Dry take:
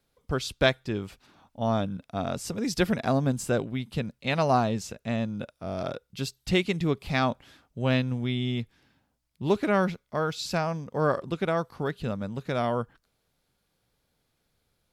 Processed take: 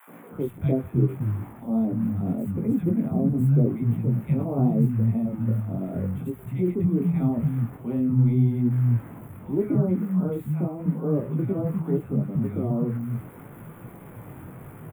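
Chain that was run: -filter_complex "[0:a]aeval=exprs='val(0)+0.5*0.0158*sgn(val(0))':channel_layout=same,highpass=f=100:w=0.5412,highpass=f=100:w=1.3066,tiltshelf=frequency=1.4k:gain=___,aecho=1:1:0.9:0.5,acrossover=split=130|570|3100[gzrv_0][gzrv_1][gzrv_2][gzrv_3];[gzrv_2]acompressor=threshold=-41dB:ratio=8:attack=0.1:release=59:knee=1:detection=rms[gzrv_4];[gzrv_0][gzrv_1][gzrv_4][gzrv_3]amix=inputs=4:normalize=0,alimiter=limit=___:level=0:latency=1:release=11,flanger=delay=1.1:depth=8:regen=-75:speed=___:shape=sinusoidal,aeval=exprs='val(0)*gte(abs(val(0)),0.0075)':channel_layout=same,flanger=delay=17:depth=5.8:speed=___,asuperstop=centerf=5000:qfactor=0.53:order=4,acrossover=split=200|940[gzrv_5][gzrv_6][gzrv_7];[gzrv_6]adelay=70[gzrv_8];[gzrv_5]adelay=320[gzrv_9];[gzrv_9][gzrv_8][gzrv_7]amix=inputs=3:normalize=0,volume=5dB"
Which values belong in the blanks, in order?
10, -10dB, 0.35, 0.81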